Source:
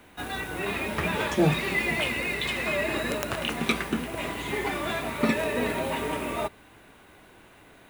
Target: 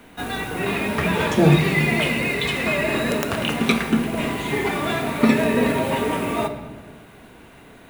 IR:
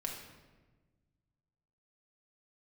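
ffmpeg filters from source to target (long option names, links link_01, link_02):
-filter_complex "[0:a]lowshelf=frequency=74:gain=-9,asplit=2[link_01][link_02];[1:a]atrim=start_sample=2205,lowshelf=frequency=380:gain=10[link_03];[link_02][link_03]afir=irnorm=-1:irlink=0,volume=-1dB[link_04];[link_01][link_04]amix=inputs=2:normalize=0"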